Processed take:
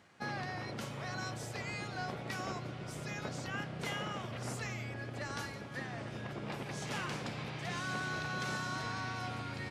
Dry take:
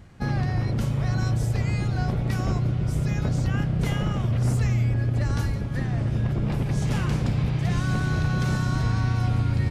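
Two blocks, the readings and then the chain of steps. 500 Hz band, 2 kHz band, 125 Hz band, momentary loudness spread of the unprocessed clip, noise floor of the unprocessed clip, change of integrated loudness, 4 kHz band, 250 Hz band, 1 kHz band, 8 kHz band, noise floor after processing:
−8.5 dB, −4.0 dB, −21.5 dB, 2 LU, −28 dBFS, −15.0 dB, −4.0 dB, −15.5 dB, −5.5 dB, −5.5 dB, −45 dBFS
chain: meter weighting curve A
level −5 dB

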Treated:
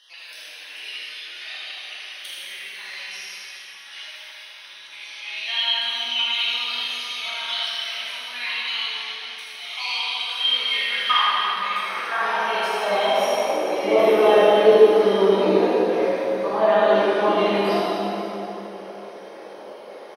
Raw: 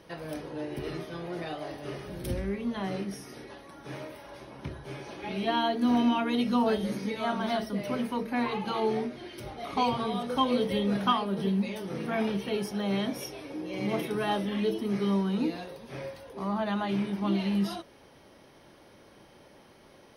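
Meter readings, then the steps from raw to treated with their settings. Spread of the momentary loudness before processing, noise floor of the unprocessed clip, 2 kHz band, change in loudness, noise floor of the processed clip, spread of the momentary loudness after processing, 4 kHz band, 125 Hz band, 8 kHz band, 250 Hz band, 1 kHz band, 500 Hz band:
15 LU, −56 dBFS, +13.0 dB, +10.0 dB, −41 dBFS, 21 LU, +16.0 dB, can't be measured, +8.5 dB, −1.5 dB, +8.5 dB, +13.0 dB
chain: time-frequency cells dropped at random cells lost 31%
high-shelf EQ 7,900 Hz −9.5 dB
high-pass filter sweep 2,900 Hz → 460 Hz, 0:10.11–0:13.77
single-tap delay 78 ms −5.5 dB
dense smooth reverb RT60 3.6 s, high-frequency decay 0.7×, DRR −8.5 dB
level +4.5 dB

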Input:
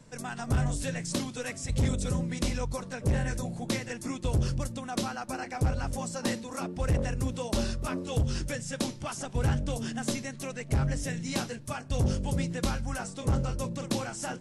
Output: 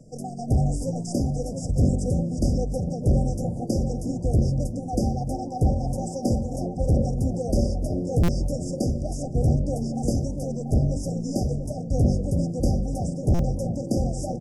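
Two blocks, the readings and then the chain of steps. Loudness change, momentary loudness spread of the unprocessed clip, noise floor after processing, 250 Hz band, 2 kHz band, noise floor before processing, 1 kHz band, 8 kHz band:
+6.5 dB, 6 LU, −33 dBFS, +7.5 dB, below −15 dB, −44 dBFS, +2.5 dB, −1.5 dB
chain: on a send: feedback echo with a low-pass in the loop 687 ms, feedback 52%, low-pass 940 Hz, level −5.5 dB
on the sum: brick-wall band-stop 790–4,700 Hz
high-shelf EQ 2,900 Hz −8.5 dB
echo with shifted repeats 297 ms, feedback 32%, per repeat +110 Hz, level −24 dB
buffer that repeats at 0:08.23/0:13.34, samples 256, times 8
level +6 dB

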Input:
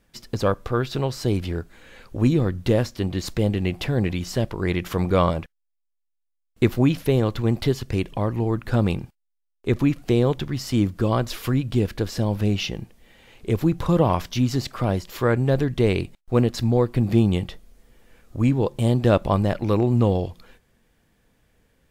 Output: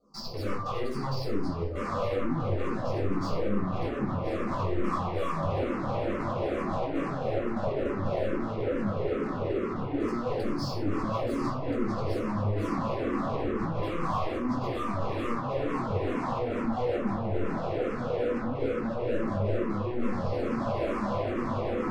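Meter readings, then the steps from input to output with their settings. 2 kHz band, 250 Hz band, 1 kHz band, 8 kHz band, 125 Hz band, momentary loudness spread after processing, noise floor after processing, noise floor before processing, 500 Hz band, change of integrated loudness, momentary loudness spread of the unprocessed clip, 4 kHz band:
−5.0 dB, −7.5 dB, −1.5 dB, below −10 dB, −11.0 dB, 2 LU, −33 dBFS, −75 dBFS, −5.0 dB, −8.0 dB, 7 LU, −10.5 dB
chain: noise gate with hold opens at −47 dBFS
Chebyshev band-stop filter 1,200–4,500 Hz, order 5
high-shelf EQ 2,400 Hz +4 dB
feedback delay with all-pass diffusion 1,692 ms, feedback 71%, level −13 dB
downward compressor 2.5 to 1, threshold −29 dBFS, peak gain reduction 11.5 dB
brickwall limiter −26.5 dBFS, peak gain reduction 10.5 dB
auto-filter low-pass saw down 0.1 Hz 390–3,900 Hz
output level in coarse steps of 22 dB
high-frequency loss of the air 58 metres
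mid-hump overdrive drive 34 dB, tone 2,300 Hz, clips at −32 dBFS
rectangular room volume 620 cubic metres, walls furnished, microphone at 6.8 metres
frequency shifter mixed with the dry sound −2.3 Hz

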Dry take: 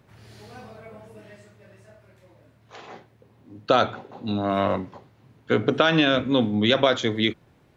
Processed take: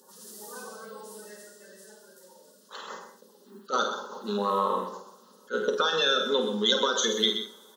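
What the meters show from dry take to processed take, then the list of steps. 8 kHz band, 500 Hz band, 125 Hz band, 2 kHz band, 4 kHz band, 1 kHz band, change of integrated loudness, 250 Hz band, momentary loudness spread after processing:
can't be measured, −5.0 dB, below −15 dB, −5.0 dB, +1.0 dB, −2.5 dB, −4.0 dB, −11.0 dB, 21 LU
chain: spectral magnitudes quantised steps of 30 dB
bass and treble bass −12 dB, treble +3 dB
phaser with its sweep stopped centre 460 Hz, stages 8
double-tracking delay 49 ms −7.5 dB
speech leveller 0.5 s
linear-phase brick-wall high-pass 170 Hz
coupled-rooms reverb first 0.49 s, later 4.5 s, from −28 dB, DRR 11 dB
downward compressor, threshold −26 dBFS, peak gain reduction 9 dB
high-shelf EQ 3,300 Hz +10.5 dB
single-tap delay 127 ms −9.5 dB
level that may rise only so fast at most 390 dB per second
level +3 dB

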